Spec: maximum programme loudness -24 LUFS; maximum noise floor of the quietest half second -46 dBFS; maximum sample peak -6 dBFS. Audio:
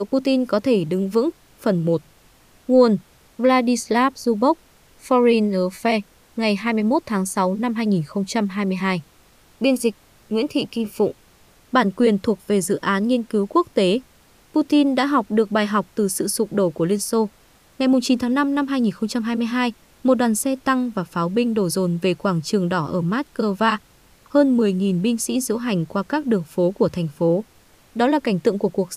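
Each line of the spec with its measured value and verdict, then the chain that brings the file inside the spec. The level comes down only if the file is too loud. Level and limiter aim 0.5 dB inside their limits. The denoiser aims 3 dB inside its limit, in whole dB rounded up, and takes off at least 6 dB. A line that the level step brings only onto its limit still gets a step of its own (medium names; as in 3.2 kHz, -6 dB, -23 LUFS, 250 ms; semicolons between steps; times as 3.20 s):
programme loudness -20.5 LUFS: fail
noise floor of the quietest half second -53 dBFS: pass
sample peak -4.0 dBFS: fail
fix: trim -4 dB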